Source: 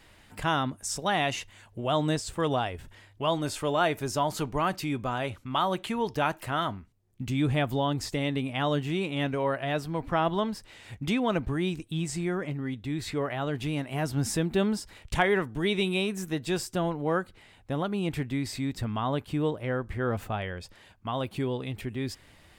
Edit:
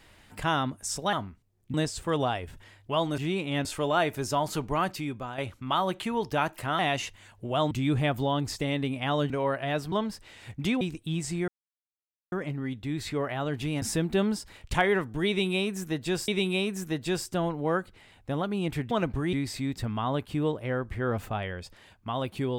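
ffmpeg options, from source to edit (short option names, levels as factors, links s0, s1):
-filter_complex "[0:a]asplit=16[s0][s1][s2][s3][s4][s5][s6][s7][s8][s9][s10][s11][s12][s13][s14][s15];[s0]atrim=end=1.132[s16];[s1]atrim=start=6.628:end=7.242[s17];[s2]atrim=start=2.048:end=3.492[s18];[s3]atrim=start=8.828:end=9.302[s19];[s4]atrim=start=3.488:end=5.22,asetpts=PTS-STARTPTS,afade=t=out:st=1.182:d=0.55:silence=0.354813[s20];[s5]atrim=start=5.22:end=6.632,asetpts=PTS-STARTPTS,afade=t=in:d=0.004:c=hsin:silence=0.354813[s21];[s6]atrim=start=1.128:end=2.052[s22];[s7]atrim=start=7.238:end=8.832[s23];[s8]atrim=start=9.298:end=9.922[s24];[s9]atrim=start=10.348:end=11.242[s25];[s10]atrim=start=11.658:end=12.33,asetpts=PTS-STARTPTS,afade=t=out:st=0.668:d=0.004:c=hsin,apad=pad_dur=0.84[s26];[s11]atrim=start=12.33:end=13.832,asetpts=PTS-STARTPTS,afade=t=in:d=0.004:c=hsin[s27];[s12]atrim=start=14.228:end=16.692[s28];[s13]atrim=start=15.688:end=18.322[s29];[s14]atrim=start=11.238:end=11.662[s30];[s15]atrim=start=18.318[s31];[s16][s17]acrossfade=d=0.004:c1=hsin:c2=hsin[s32];[s32][s18]acrossfade=d=0.004:c1=hsin:c2=hsin[s33];[s33][s19]acrossfade=d=0.004:c1=hsin:c2=hsin[s34];[s20][s21]concat=n=2:v=0:a=1[s35];[s34][s35]acrossfade=d=0.004:c1=hsin:c2=hsin[s36];[s36][s22]acrossfade=d=0.004:c1=hsin:c2=hsin[s37];[s37][s23]acrossfade=d=0.004:c1=hsin:c2=hsin[s38];[s38][s24]acrossfade=d=0.004:c1=hsin:c2=hsin[s39];[s39][s25]acrossfade=d=0.004:c1=hsin:c2=hsin[s40];[s26][s27]concat=n=2:v=0:a=1[s41];[s40][s41]acrossfade=d=0.004:c1=hsin:c2=hsin[s42];[s42][s28]acrossfade=d=0.004:c1=hsin:c2=hsin[s43];[s43][s29]acrossfade=d=0.004:c1=hsin:c2=hsin[s44];[s44][s30]acrossfade=d=0.004:c1=hsin:c2=hsin[s45];[s45][s31]acrossfade=d=0.004:c1=hsin:c2=hsin"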